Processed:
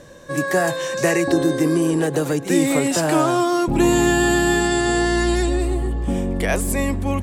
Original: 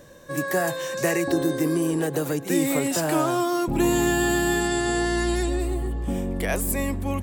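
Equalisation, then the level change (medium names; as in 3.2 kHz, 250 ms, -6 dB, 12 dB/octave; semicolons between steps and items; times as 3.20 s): low-pass 9.7 kHz 12 dB/octave; +5.0 dB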